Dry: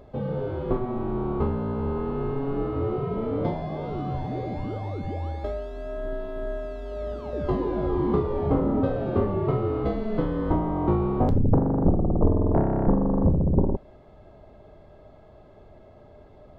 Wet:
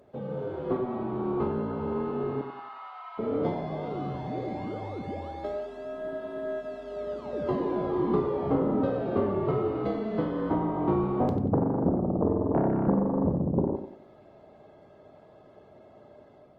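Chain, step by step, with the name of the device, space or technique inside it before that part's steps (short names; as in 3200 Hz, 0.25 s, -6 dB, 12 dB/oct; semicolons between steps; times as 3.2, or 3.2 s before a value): 2.41–3.19 steep high-pass 800 Hz 48 dB/oct; tape echo 90 ms, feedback 42%, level -8 dB, low-pass 3300 Hz; video call (HPF 150 Hz 12 dB/oct; AGC gain up to 3.5 dB; gain -5.5 dB; Opus 20 kbps 48000 Hz)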